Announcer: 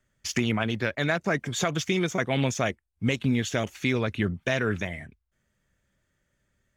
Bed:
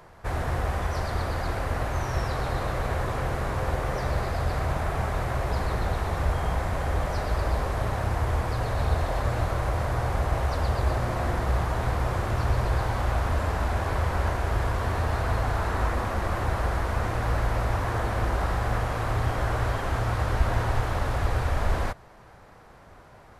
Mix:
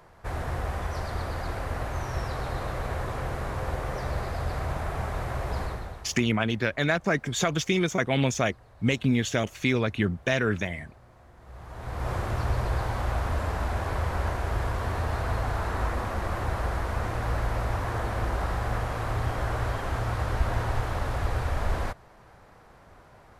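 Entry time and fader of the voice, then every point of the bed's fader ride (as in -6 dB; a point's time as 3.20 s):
5.80 s, +1.0 dB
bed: 5.63 s -3.5 dB
6.37 s -27 dB
11.34 s -27 dB
12.10 s -2.5 dB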